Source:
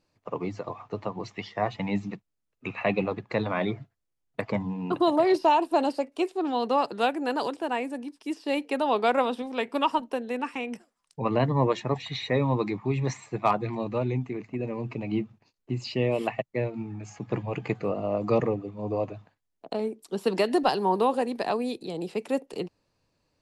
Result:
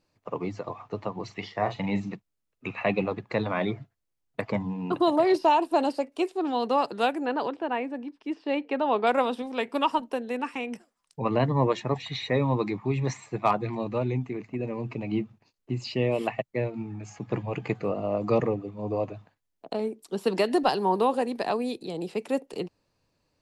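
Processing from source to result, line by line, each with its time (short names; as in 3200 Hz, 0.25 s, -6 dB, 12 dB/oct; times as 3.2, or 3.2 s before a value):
1.25–2.13 doubler 41 ms -10 dB
7.25–9.07 LPF 2900 Hz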